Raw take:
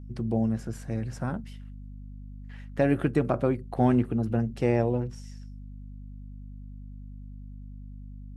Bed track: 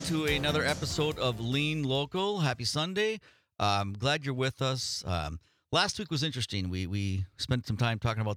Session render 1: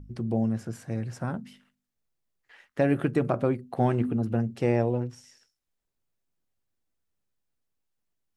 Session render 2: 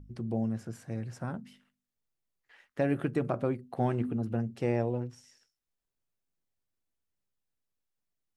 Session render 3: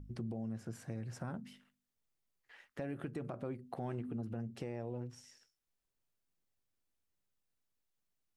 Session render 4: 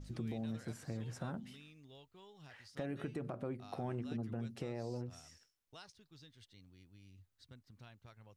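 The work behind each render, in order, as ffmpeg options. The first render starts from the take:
-af "bandreject=f=50:t=h:w=4,bandreject=f=100:t=h:w=4,bandreject=f=150:t=h:w=4,bandreject=f=200:t=h:w=4,bandreject=f=250:t=h:w=4"
-af "volume=0.562"
-af "alimiter=level_in=1.41:limit=0.0631:level=0:latency=1:release=228,volume=0.708,acompressor=threshold=0.01:ratio=2"
-filter_complex "[1:a]volume=0.0376[s0];[0:a][s0]amix=inputs=2:normalize=0"

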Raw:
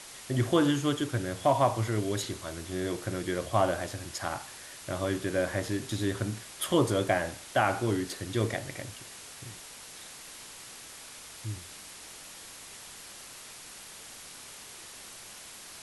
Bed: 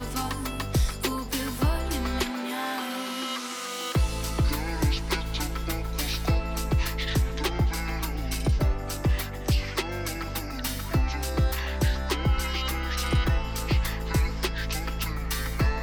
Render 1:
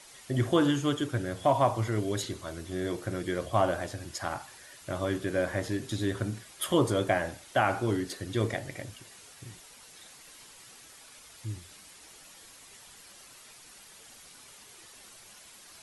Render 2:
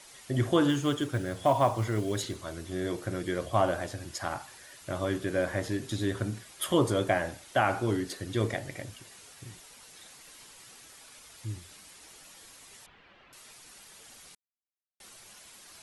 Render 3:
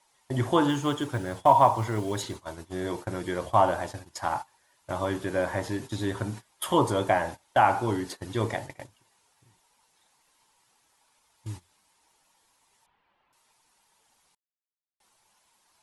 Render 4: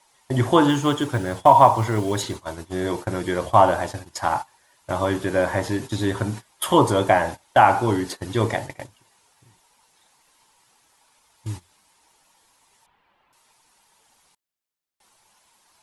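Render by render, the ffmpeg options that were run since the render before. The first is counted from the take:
-af "afftdn=nr=8:nf=-47"
-filter_complex "[0:a]asettb=1/sr,asplit=3[s0][s1][s2];[s0]atrim=end=0.694[s3];[s1]atrim=start=0.69:end=2.37,asetpts=PTS-STARTPTS,afade=t=in:d=0.004:c=qsin,afade=t=out:st=1.676:d=0.004:c=qsin,acrusher=bits=8:mode=log:mix=0:aa=0.000001[s4];[s2]atrim=start=2.366[s5];[s3][s4]acrossfade=d=0.004:c1=hsin:c2=qsin[s6];[s6][s5]acrossfade=d=0.004:c1=qsin:c2=hsin,asettb=1/sr,asplit=3[s7][s8][s9];[s7]atrim=end=12.864[s10];[s8]atrim=start=12.86:end=13.33,asetpts=PTS-STARTPTS,afade=t=in:d=0.004:c=qsin,afade=t=out:st=0.466:d=0.004:c=qsin,lowpass=f=2900:w=0.5412,lowpass=f=2900:w=1.3066[s11];[s9]atrim=start=13.326[s12];[s10][s11]acrossfade=d=0.004:c1=hsin:c2=qsin[s13];[s13][s12]acrossfade=d=0.004:c1=qsin:c2=hsin,asplit=3[s14][s15][s16];[s14]atrim=end=14.35,asetpts=PTS-STARTPTS,afade=t=out:st=14.346:d=0.004:c=hsin[s17];[s15]atrim=start=14.35:end=15,asetpts=PTS-STARTPTS,volume=0[s18];[s16]atrim=start=15,asetpts=PTS-STARTPTS,afade=t=in:d=0.004:c=hsin[s19];[s17][s18][s19]concat=n=3:v=0:a=1"
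-af "agate=range=0.141:threshold=0.0126:ratio=16:detection=peak,equalizer=f=910:t=o:w=0.47:g=13"
-af "volume=2.11,alimiter=limit=0.891:level=0:latency=1"

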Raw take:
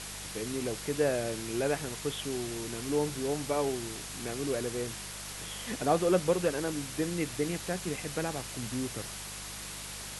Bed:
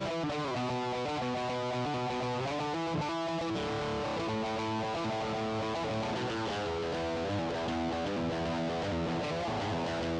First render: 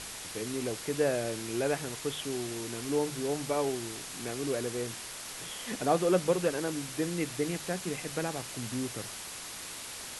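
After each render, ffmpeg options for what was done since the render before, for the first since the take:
-af "bandreject=f=50:t=h:w=4,bandreject=f=100:t=h:w=4,bandreject=f=150:t=h:w=4,bandreject=f=200:t=h:w=4"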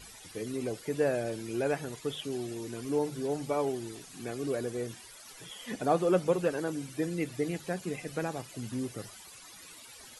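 -af "afftdn=nr=15:nf=-42"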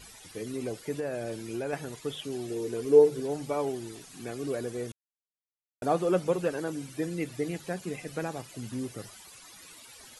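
-filter_complex "[0:a]asettb=1/sr,asplit=3[s0][s1][s2];[s0]atrim=end=0.994[s3];[s1]atrim=start=0.99:end=1.73,asetpts=PTS-STARTPTS,afade=t=in:d=0.004:c=qsin,afade=t=out:st=0.736:d=0.004:c=qsin,acompressor=threshold=0.0355:ratio=5:attack=3.2:release=140:knee=1:detection=peak[s4];[s2]atrim=start=1.726[s5];[s3][s4]acrossfade=d=0.004:c1=hsin:c2=qsin[s6];[s6][s5]acrossfade=d=0.004:c1=qsin:c2=hsin,asettb=1/sr,asplit=3[s7][s8][s9];[s7]atrim=end=2.504[s10];[s8]atrim=start=2.5:end=3.2,asetpts=PTS-STARTPTS,afade=t=in:d=0.004:c=qsin,afade=t=out:st=0.696:d=0.004:c=qsin,equalizer=f=440:w=3:g=13.5[s11];[s9]atrim=start=3.196[s12];[s10][s11]acrossfade=d=0.004:c1=hsin:c2=qsin[s13];[s13][s12]acrossfade=d=0.004:c1=qsin:c2=hsin,asplit=3[s14][s15][s16];[s14]atrim=end=4.92,asetpts=PTS-STARTPTS,afade=t=out:st=4.916:d=0.004:c=hsin[s17];[s15]atrim=start=4.92:end=5.82,asetpts=PTS-STARTPTS,volume=0[s18];[s16]atrim=start=5.82,asetpts=PTS-STARTPTS,afade=t=in:d=0.004:c=hsin[s19];[s17][s18][s19]concat=n=3:v=0:a=1"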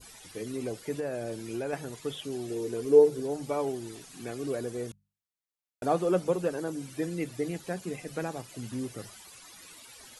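-af "bandreject=f=50:t=h:w=6,bandreject=f=100:t=h:w=6,bandreject=f=150:t=h:w=6,bandreject=f=200:t=h:w=6,adynamicequalizer=threshold=0.00447:dfrequency=2300:dqfactor=0.78:tfrequency=2300:tqfactor=0.78:attack=5:release=100:ratio=0.375:range=3:mode=cutabove:tftype=bell"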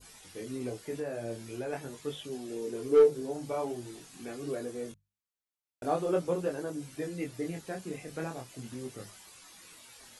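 -af "asoftclip=type=hard:threshold=0.2,flanger=delay=20:depth=6.4:speed=0.44"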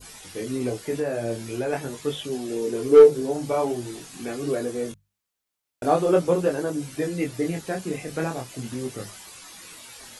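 -af "volume=2.99"

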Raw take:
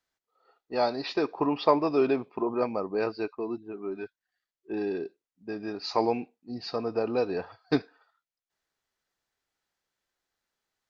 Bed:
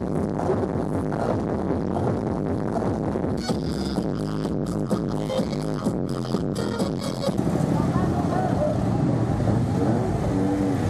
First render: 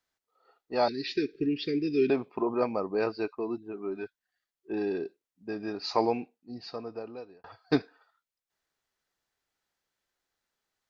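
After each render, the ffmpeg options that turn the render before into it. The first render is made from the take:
-filter_complex "[0:a]asettb=1/sr,asplit=3[s0][s1][s2];[s0]atrim=end=0.884[s3];[s1]atrim=start=0.88:end=2.1,asetpts=PTS-STARTPTS,afade=t=in:d=0.004:c=qsin,afade=t=out:st=1.216:d=0.004:c=qsin,asuperstop=centerf=840:order=12:qfactor=0.68[s4];[s2]atrim=start=2.096[s5];[s3][s4]acrossfade=d=0.004:c1=hsin:c2=qsin[s6];[s6][s5]acrossfade=d=0.004:c1=qsin:c2=hsin,asplit=2[s7][s8];[s7]atrim=end=7.44,asetpts=PTS-STARTPTS,afade=t=out:st=5.95:d=1.49[s9];[s8]atrim=start=7.44,asetpts=PTS-STARTPTS,afade=t=in:d=0.004:c=hsin[s10];[s9][s10]concat=n=2:v=0:a=1"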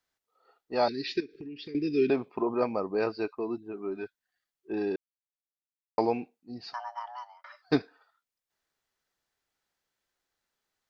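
-filter_complex "[0:a]asettb=1/sr,asplit=3[s0][s1][s2];[s0]atrim=end=1.204[s3];[s1]atrim=start=1.2:end=1.75,asetpts=PTS-STARTPTS,afade=t=in:d=0.004:c=qsin,afade=t=out:st=0.546:d=0.004:c=qsin,acompressor=threshold=0.01:ratio=5:attack=3.2:release=140:knee=1:detection=peak[s4];[s2]atrim=start=1.746[s5];[s3][s4]acrossfade=d=0.004:c1=hsin:c2=qsin[s6];[s6][s5]acrossfade=d=0.004:c1=qsin:c2=hsin,asplit=3[s7][s8][s9];[s7]afade=t=out:st=6.72:d=0.02[s10];[s8]afreqshift=490,afade=t=in:st=6.72:d=0.02,afade=t=out:st=7.61:d=0.02[s11];[s9]afade=t=in:st=7.61:d=0.02[s12];[s10][s11][s12]amix=inputs=3:normalize=0,asplit=3[s13][s14][s15];[s13]atrim=end=4.96,asetpts=PTS-STARTPTS,afade=t=out:st=4.956:d=0.004:c=hsin[s16];[s14]atrim=start=4.96:end=5.98,asetpts=PTS-STARTPTS,volume=0[s17];[s15]atrim=start=5.98,asetpts=PTS-STARTPTS,afade=t=in:d=0.004:c=hsin[s18];[s16][s17][s18]concat=n=3:v=0:a=1"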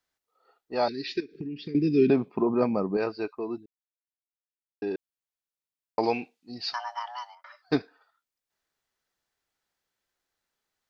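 -filter_complex "[0:a]asettb=1/sr,asplit=3[s0][s1][s2];[s0]atrim=end=1.314[s3];[s1]atrim=start=1.31:end=2.97,asetpts=PTS-STARTPTS,afade=t=in:d=0.004:c=qsin,afade=t=out:st=1.656:d=0.004:c=qsin,equalizer=f=170:t=o:w=1.5:g=12[s4];[s2]atrim=start=2.966[s5];[s3][s4]acrossfade=d=0.004:c1=hsin:c2=qsin[s6];[s6][s5]acrossfade=d=0.004:c1=qsin:c2=hsin,asettb=1/sr,asplit=3[s7][s8][s9];[s7]atrim=end=6.034[s10];[s8]atrim=start=6.03:end=7.35,asetpts=PTS-STARTPTS,afade=t=in:d=0.004:c=qsin,afade=t=out:st=1.316:d=0.004:c=qsin,equalizer=f=3900:w=0.44:g=12.5[s11];[s9]atrim=start=7.346[s12];[s10][s11]acrossfade=d=0.004:c1=hsin:c2=qsin[s13];[s13][s12]acrossfade=d=0.004:c1=qsin:c2=hsin,asplit=3[s14][s15][s16];[s14]atrim=end=3.66,asetpts=PTS-STARTPTS,afade=t=out:st=3.656:d=0.004:c=hsin[s17];[s15]atrim=start=3.66:end=4.82,asetpts=PTS-STARTPTS,volume=0[s18];[s16]atrim=start=4.82,asetpts=PTS-STARTPTS,afade=t=in:d=0.004:c=hsin[s19];[s17][s18][s19]concat=n=3:v=0:a=1"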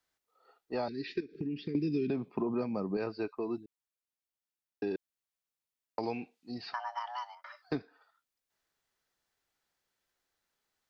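-filter_complex "[0:a]alimiter=limit=0.168:level=0:latency=1:release=450,acrossover=split=240|2500[s0][s1][s2];[s0]acompressor=threshold=0.0158:ratio=4[s3];[s1]acompressor=threshold=0.02:ratio=4[s4];[s2]acompressor=threshold=0.002:ratio=4[s5];[s3][s4][s5]amix=inputs=3:normalize=0"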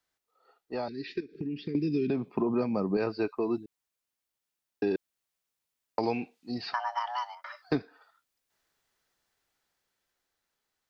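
-af "dynaudnorm=f=470:g=9:m=2"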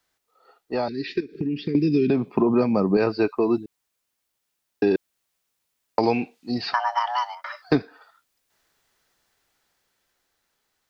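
-af "volume=2.66"

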